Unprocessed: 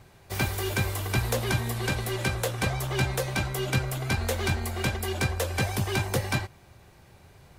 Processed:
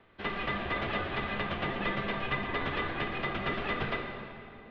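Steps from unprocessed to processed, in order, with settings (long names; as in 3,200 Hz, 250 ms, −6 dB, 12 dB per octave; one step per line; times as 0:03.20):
ceiling on every frequency bin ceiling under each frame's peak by 13 dB
in parallel at −11.5 dB: slack as between gear wheels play −37 dBFS
on the sum: phase-vocoder stretch with locked phases 0.62×
gate on every frequency bin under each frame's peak −30 dB strong
on a send at −2 dB: convolution reverb RT60 2.9 s, pre-delay 3 ms
on the sum: single-sideband voice off tune −380 Hz 350–3,600 Hz
level −5 dB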